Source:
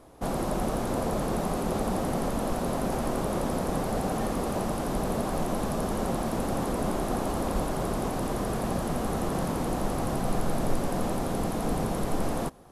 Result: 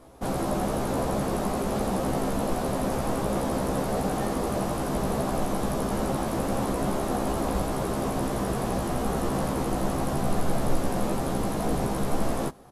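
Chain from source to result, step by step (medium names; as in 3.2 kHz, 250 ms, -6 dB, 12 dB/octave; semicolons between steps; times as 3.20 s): doubling 15 ms -3 dB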